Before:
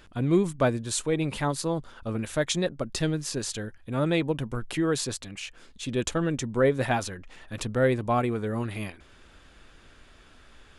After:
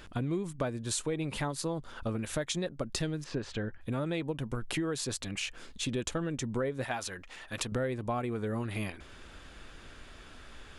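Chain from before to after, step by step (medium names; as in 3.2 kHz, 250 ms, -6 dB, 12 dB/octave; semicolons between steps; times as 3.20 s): 3.24–3.81 s: low-pass 2.4 kHz 12 dB/octave; 6.84–7.72 s: bass shelf 420 Hz -10.5 dB; compression 6:1, threshold -34 dBFS, peak gain reduction 16 dB; trim +3.5 dB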